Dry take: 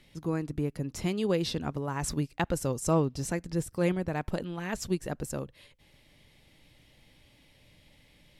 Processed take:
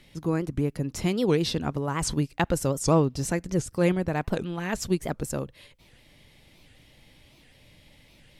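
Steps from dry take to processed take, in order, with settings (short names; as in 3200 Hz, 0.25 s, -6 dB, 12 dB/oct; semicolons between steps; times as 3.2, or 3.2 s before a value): record warp 78 rpm, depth 250 cents; gain +4.5 dB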